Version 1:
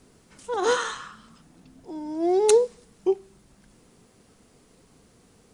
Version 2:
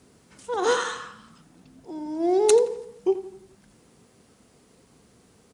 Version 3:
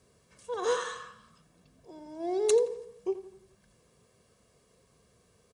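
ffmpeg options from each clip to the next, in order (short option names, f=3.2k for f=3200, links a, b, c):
-filter_complex "[0:a]highpass=56,asplit=2[a][b];[b]adelay=85,lowpass=f=2.9k:p=1,volume=-12dB,asplit=2[c][d];[d]adelay=85,lowpass=f=2.9k:p=1,volume=0.49,asplit=2[e][f];[f]adelay=85,lowpass=f=2.9k:p=1,volume=0.49,asplit=2[g][h];[h]adelay=85,lowpass=f=2.9k:p=1,volume=0.49,asplit=2[i][j];[j]adelay=85,lowpass=f=2.9k:p=1,volume=0.49[k];[c][e][g][i][k]amix=inputs=5:normalize=0[l];[a][l]amix=inputs=2:normalize=0"
-af "aecho=1:1:1.8:0.59,volume=-8.5dB"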